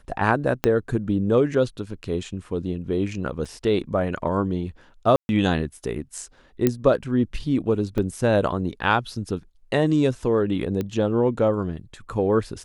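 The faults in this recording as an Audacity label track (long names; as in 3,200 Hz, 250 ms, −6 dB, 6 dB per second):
0.640000	0.640000	click −6 dBFS
3.450000	3.450000	drop-out 4.6 ms
5.160000	5.290000	drop-out 131 ms
6.670000	6.670000	click −6 dBFS
7.980000	7.980000	drop-out 3.1 ms
10.810000	10.810000	click −15 dBFS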